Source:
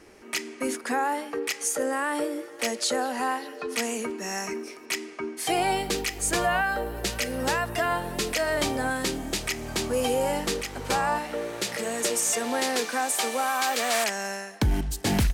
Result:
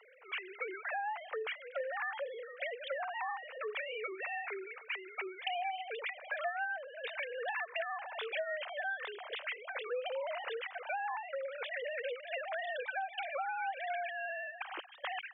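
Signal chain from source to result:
three sine waves on the formant tracks
Bessel high-pass filter 900 Hz, order 2
downward compressor 5 to 1, threshold −37 dBFS, peak gain reduction 16.5 dB
level +1 dB

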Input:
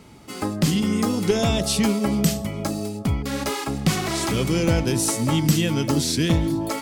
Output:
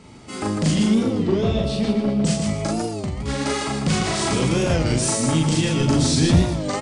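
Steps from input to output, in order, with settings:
0:00.90–0:02.25: drawn EQ curve 540 Hz 0 dB, 810 Hz −9 dB, 3,900 Hz −7 dB, 7,000 Hz −20 dB
soft clipping −16 dBFS, distortion −15 dB
linear-phase brick-wall low-pass 9,900 Hz
loudspeakers that aren't time-aligned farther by 13 metres −1 dB, 52 metres −4 dB
0:02.87–0:03.28: downward compressor, threshold −24 dBFS, peak gain reduction 7.5 dB
0:05.80–0:06.43: low-shelf EQ 220 Hz +6.5 dB
feedback echo with a high-pass in the loop 123 ms, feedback 57%, level −13 dB
wow of a warped record 33 1/3 rpm, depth 160 cents

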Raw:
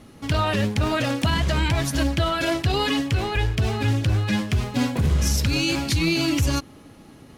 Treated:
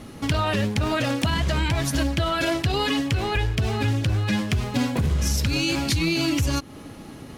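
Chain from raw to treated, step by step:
downward compressor 2.5 to 1, threshold −30 dBFS, peak gain reduction 9.5 dB
level +6.5 dB

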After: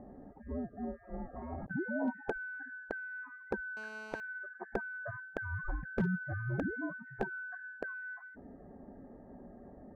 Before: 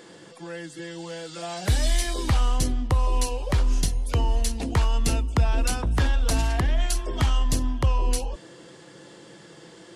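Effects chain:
band-splitting scrambler in four parts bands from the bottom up 2143
gate on every frequency bin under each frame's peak −30 dB strong
Butterworth low-pass 860 Hz 36 dB per octave
0:01.14–0:01.71: compressor whose output falls as the input rises −48 dBFS, ratio −0.5
hard clipping −31.5 dBFS, distortion −13 dB
0:03.77–0:04.20: phone interference −57 dBFS
level +6.5 dB

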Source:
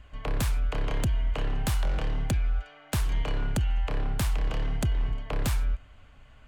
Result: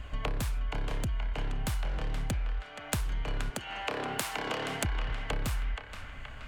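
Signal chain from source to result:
0:03.50–0:04.85: high-pass filter 320 Hz 12 dB per octave
downward compressor 10 to 1, threshold −38 dBFS, peak gain reduction 15 dB
on a send: feedback echo with a band-pass in the loop 475 ms, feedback 65%, band-pass 1,800 Hz, level −4.5 dB
on the sum: level +8.5 dB

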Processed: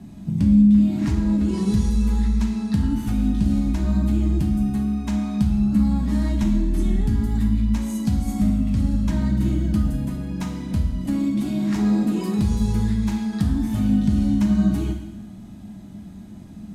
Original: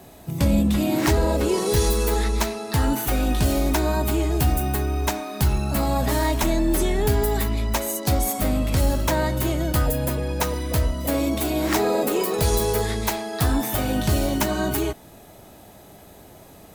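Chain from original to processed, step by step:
low-pass filter 8,200 Hz 12 dB per octave
low shelf with overshoot 330 Hz +12.5 dB, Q 3
downward compressor 2.5 to 1, threshold −15 dBFS, peak gain reduction 11.5 dB
on a send: convolution reverb RT60 1.2 s, pre-delay 5 ms, DRR 2 dB
on the sum: level −7.5 dB

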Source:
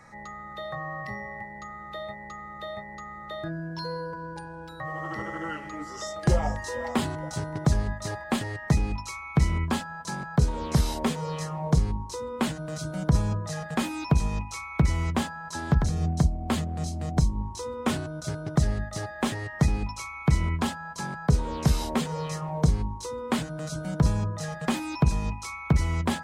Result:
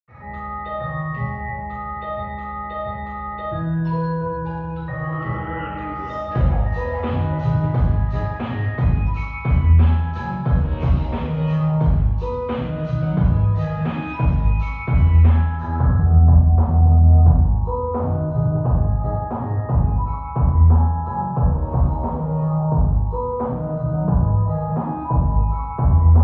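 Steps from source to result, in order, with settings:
low-pass filter sweep 2,600 Hz → 930 Hz, 0:15.08–0:16.07
downward compressor 4 to 1, threshold −31 dBFS, peak gain reduction 13 dB
convolution reverb RT60 1.1 s, pre-delay 77 ms, DRR −60 dB
level −5 dB

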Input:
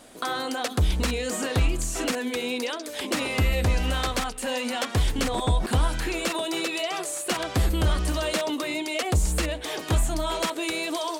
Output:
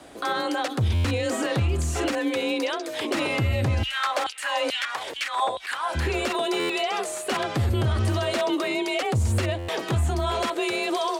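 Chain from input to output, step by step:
high-shelf EQ 5,300 Hz −10.5 dB
brickwall limiter −21 dBFS, peak gain reduction 7 dB
0:03.83–0:05.95: auto-filter high-pass saw down 2.3 Hz 380–3,500 Hz
frequency shifter +34 Hz
buffer that repeats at 0:00.94/0:06.59/0:09.58, samples 512, times 8
level +4.5 dB

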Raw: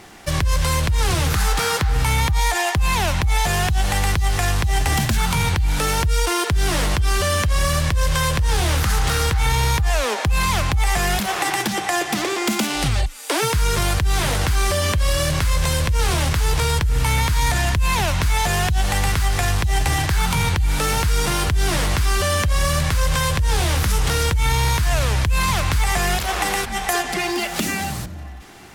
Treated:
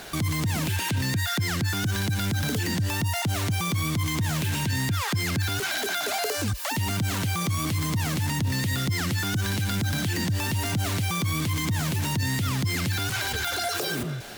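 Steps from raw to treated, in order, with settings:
brickwall limiter −22.5 dBFS, peak gain reduction 11 dB
wrong playback speed 7.5 ips tape played at 15 ips
level +2.5 dB

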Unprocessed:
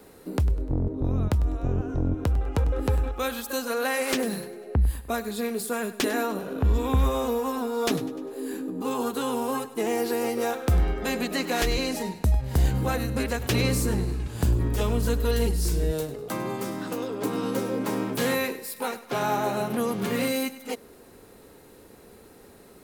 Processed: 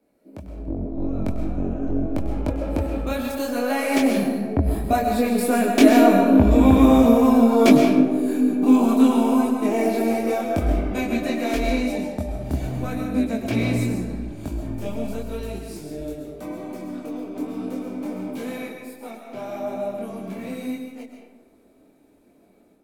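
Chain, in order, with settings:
source passing by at 0:06.61, 14 m/s, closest 19 metres
multi-voice chorus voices 4, 0.83 Hz, delay 23 ms, depth 3.6 ms
automatic gain control gain up to 15 dB
hollow resonant body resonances 270/610/2,300 Hz, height 13 dB, ringing for 25 ms
on a send: convolution reverb RT60 1.1 s, pre-delay 90 ms, DRR 3 dB
on the sum: level −7 dB

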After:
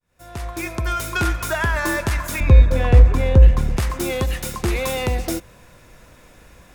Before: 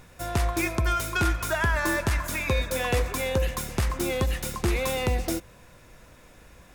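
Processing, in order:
fade in at the beginning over 1.16 s
0:02.40–0:03.77: RIAA equalisation playback
in parallel at −9.5 dB: gain into a clipping stage and back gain 21.5 dB
on the sum: level +1.5 dB

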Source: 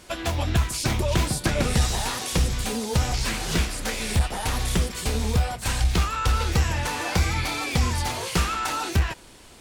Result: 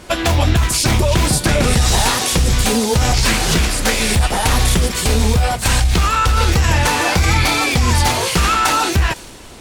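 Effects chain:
in parallel at 0 dB: compressor whose output falls as the input rises −25 dBFS, ratio −0.5
on the sum: delay with a high-pass on its return 169 ms, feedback 78%, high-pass 4,500 Hz, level −18 dB
one half of a high-frequency compander decoder only
level +5 dB

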